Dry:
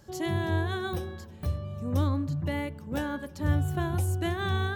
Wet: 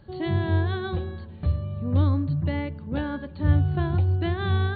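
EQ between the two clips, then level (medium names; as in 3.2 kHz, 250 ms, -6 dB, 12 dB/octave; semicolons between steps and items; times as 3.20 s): brick-wall FIR low-pass 4.6 kHz; bass shelf 260 Hz +7 dB; 0.0 dB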